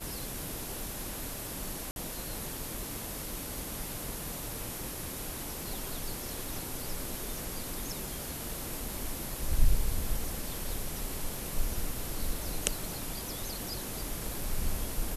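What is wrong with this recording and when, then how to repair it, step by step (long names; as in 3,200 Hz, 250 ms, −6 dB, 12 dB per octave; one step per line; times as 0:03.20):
0:01.91–0:01.96: drop-out 51 ms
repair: repair the gap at 0:01.91, 51 ms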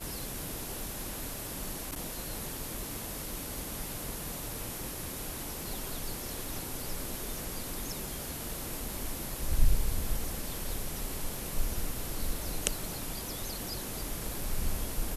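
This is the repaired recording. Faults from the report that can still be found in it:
none of them is left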